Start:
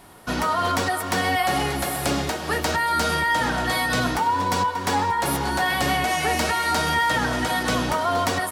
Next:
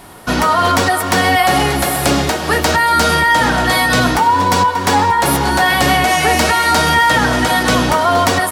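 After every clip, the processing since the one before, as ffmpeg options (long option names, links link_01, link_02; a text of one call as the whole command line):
ffmpeg -i in.wav -af "acontrast=63,volume=3.5dB" out.wav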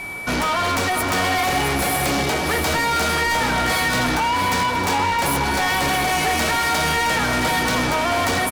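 ffmpeg -i in.wav -af "asoftclip=type=tanh:threshold=-19dB,aecho=1:1:670:0.422,aeval=exprs='val(0)+0.0355*sin(2*PI*2300*n/s)':channel_layout=same" out.wav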